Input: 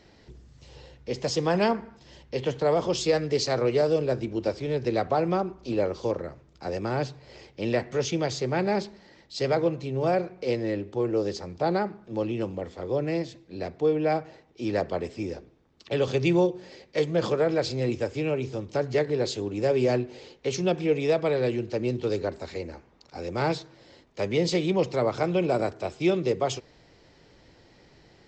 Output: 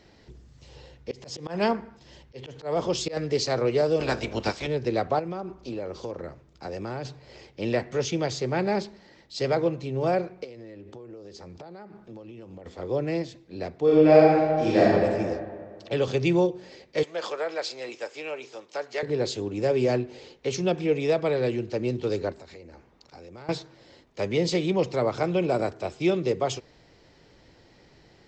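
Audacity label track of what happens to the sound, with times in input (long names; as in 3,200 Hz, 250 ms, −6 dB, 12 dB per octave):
1.110000	3.170000	volume swells 175 ms
3.990000	4.660000	ceiling on every frequency bin ceiling under each frame's peak by 20 dB
5.190000	7.050000	downward compressor 4 to 1, threshold −30 dBFS
10.440000	12.660000	downward compressor 16 to 1, threshold −39 dBFS
13.840000	14.880000	thrown reverb, RT60 2 s, DRR −8 dB
17.030000	19.030000	high-pass filter 690 Hz
22.320000	23.490000	downward compressor 5 to 1, threshold −43 dBFS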